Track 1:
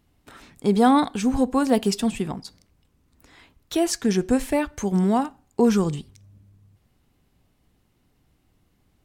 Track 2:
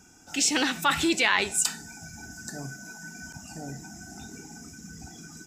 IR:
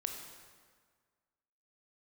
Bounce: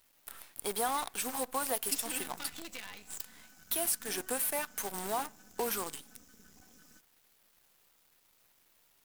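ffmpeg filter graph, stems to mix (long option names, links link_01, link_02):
-filter_complex "[0:a]aexciter=amount=10.9:drive=3.7:freq=9200,highpass=730,acompressor=threshold=-29dB:ratio=3,volume=-2.5dB[link_01];[1:a]bandreject=frequency=1100:width=7,aecho=1:1:4:0.95,acompressor=threshold=-24dB:ratio=8,adelay=1550,volume=-16dB[link_02];[link_01][link_02]amix=inputs=2:normalize=0,acrusher=bits=7:dc=4:mix=0:aa=0.000001"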